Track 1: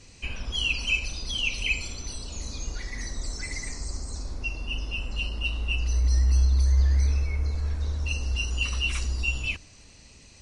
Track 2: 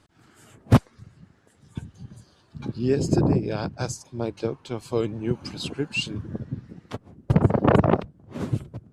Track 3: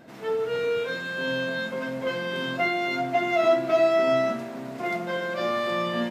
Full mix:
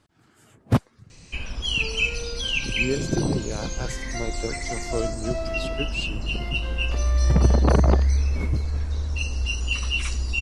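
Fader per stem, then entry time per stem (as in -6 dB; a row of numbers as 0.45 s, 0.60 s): +2.0 dB, -3.5 dB, -11.0 dB; 1.10 s, 0.00 s, 1.55 s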